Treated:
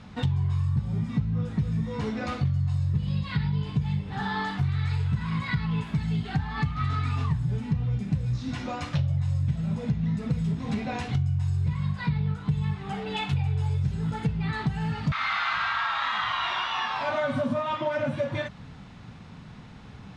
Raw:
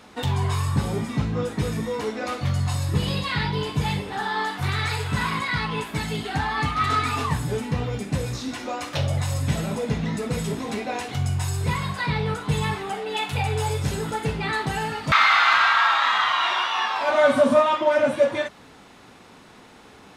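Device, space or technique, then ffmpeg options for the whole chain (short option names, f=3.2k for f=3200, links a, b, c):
jukebox: -af "lowpass=5.5k,lowshelf=f=230:t=q:w=1.5:g=13.5,acompressor=threshold=-21dB:ratio=6,volume=-3dB"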